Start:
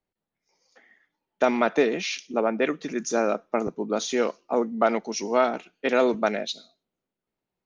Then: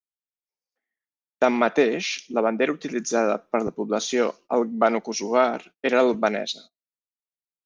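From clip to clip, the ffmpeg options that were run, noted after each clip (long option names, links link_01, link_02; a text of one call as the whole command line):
ffmpeg -i in.wav -af "agate=range=-30dB:threshold=-46dB:ratio=16:detection=peak,volume=2dB" out.wav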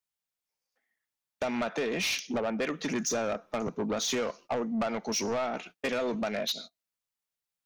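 ffmpeg -i in.wav -af "equalizer=frequency=350:width_type=o:width=0.86:gain=-5.5,acompressor=threshold=-27dB:ratio=12,asoftclip=type=tanh:threshold=-30.5dB,volume=5.5dB" out.wav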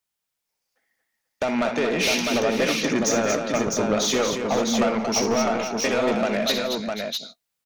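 ffmpeg -i in.wav -af "aecho=1:1:62|171|230|492|655:0.335|0.126|0.473|0.237|0.631,volume=6.5dB" out.wav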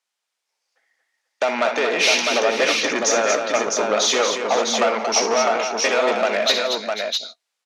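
ffmpeg -i in.wav -af "highpass=500,lowpass=7400,volume=6dB" out.wav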